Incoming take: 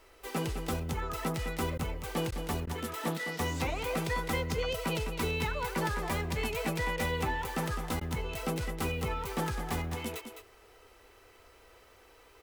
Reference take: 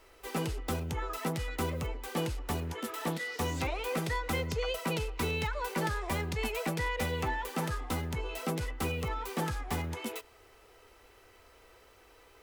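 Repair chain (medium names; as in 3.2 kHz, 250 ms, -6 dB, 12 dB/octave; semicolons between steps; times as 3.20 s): interpolate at 1.78/2.31/2.66/8.00 s, 10 ms; inverse comb 208 ms -8.5 dB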